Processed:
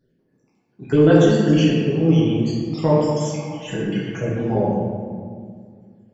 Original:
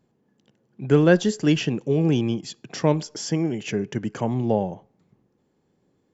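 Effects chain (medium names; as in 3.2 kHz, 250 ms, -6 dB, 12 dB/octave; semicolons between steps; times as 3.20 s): random holes in the spectrogram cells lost 60%; 3.35–4.29 s: comb 6.1 ms, depth 92%; reverberation RT60 2.0 s, pre-delay 7 ms, DRR -7 dB; trim -2.5 dB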